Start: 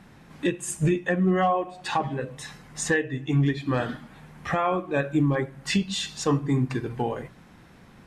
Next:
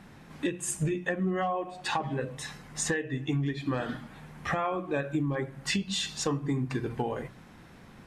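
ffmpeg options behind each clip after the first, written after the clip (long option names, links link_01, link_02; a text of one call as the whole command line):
ffmpeg -i in.wav -af "bandreject=frequency=60:width_type=h:width=6,bandreject=frequency=120:width_type=h:width=6,bandreject=frequency=180:width_type=h:width=6,acompressor=threshold=-26dB:ratio=6" out.wav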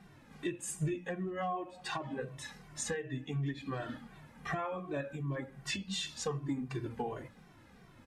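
ffmpeg -i in.wav -filter_complex "[0:a]asplit=2[link_01][link_02];[link_02]adelay=2.1,afreqshift=-2.7[link_03];[link_01][link_03]amix=inputs=2:normalize=1,volume=-4dB" out.wav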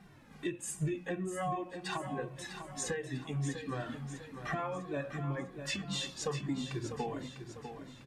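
ffmpeg -i in.wav -af "aecho=1:1:649|1298|1947|2596|3245:0.355|0.16|0.0718|0.0323|0.0145" out.wav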